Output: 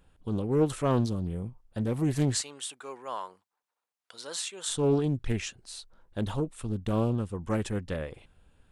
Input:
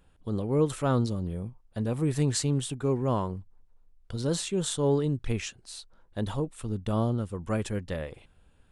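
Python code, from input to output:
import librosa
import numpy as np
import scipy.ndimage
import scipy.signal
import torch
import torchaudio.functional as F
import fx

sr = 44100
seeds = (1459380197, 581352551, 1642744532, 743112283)

y = fx.highpass(x, sr, hz=940.0, slope=12, at=(2.41, 4.69))
y = fx.doppler_dist(y, sr, depth_ms=0.38)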